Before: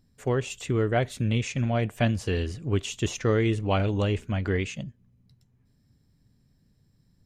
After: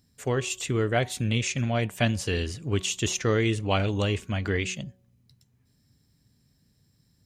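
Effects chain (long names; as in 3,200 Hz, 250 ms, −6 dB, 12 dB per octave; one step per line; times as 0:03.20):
high-pass filter 46 Hz
high-shelf EQ 2,300 Hz +9 dB
hum removal 185.5 Hz, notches 6
level −1 dB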